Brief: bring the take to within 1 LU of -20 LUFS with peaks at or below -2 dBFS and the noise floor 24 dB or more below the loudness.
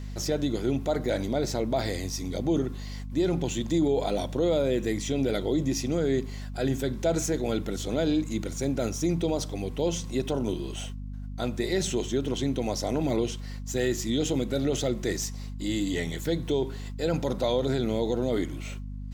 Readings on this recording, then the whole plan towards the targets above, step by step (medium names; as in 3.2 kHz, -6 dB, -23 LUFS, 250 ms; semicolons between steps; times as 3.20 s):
hum 50 Hz; highest harmonic 250 Hz; hum level -34 dBFS; loudness -28.5 LUFS; peak level -14.5 dBFS; loudness target -20.0 LUFS
-> hum notches 50/100/150/200/250 Hz; trim +8.5 dB